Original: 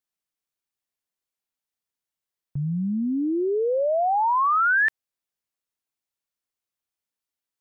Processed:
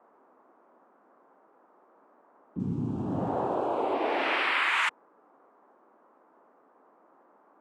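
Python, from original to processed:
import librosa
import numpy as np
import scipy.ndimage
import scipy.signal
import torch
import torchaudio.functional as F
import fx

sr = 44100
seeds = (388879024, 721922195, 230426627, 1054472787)

y = fx.law_mismatch(x, sr, coded='mu', at=(2.59, 3.94))
y = fx.noise_vocoder(y, sr, seeds[0], bands=4)
y = fx.dmg_noise_band(y, sr, seeds[1], low_hz=240.0, high_hz=1200.0, level_db=-55.0)
y = y * librosa.db_to_amplitude(-6.5)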